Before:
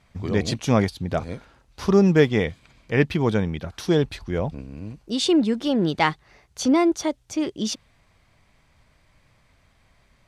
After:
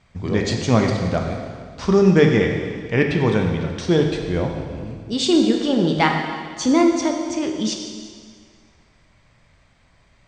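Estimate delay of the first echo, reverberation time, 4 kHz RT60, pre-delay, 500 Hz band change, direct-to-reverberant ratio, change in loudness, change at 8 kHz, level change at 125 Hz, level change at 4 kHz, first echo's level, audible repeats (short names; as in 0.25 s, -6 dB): none, 1.9 s, 1.8 s, 7 ms, +3.5 dB, 2.0 dB, +3.0 dB, +3.0 dB, +3.5 dB, +3.5 dB, none, none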